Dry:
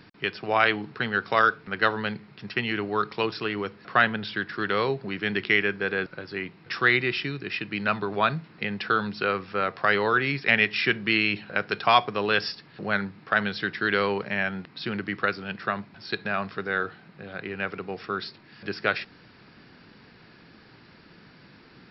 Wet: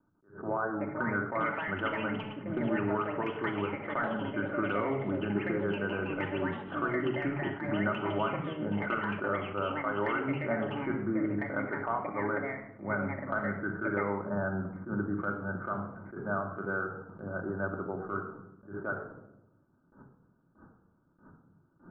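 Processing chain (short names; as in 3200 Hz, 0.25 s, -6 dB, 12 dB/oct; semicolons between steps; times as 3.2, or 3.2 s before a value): steep low-pass 1500 Hz 96 dB/oct; gate with hold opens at -42 dBFS; compressor 6:1, threshold -30 dBFS, peak gain reduction 15.5 dB; echoes that change speed 0.643 s, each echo +6 st, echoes 2, each echo -6 dB; vibrato 0.6 Hz 5.8 cents; shoebox room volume 3000 m³, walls furnished, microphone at 2.6 m; attack slew limiter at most 160 dB/s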